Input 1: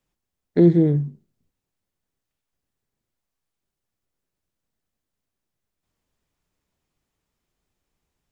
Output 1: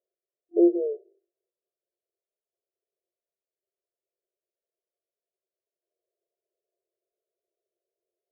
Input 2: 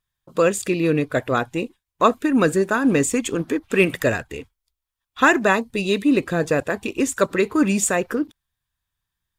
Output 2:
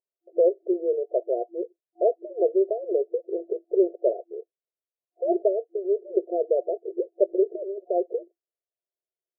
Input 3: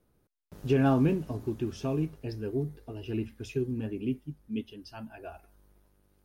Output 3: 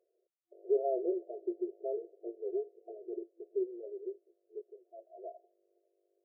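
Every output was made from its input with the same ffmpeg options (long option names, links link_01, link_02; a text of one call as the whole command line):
ffmpeg -i in.wav -af "afftfilt=real='re*between(b*sr/4096,340,720)':imag='im*between(b*sr/4096,340,720)':win_size=4096:overlap=0.75,volume=-1dB" out.wav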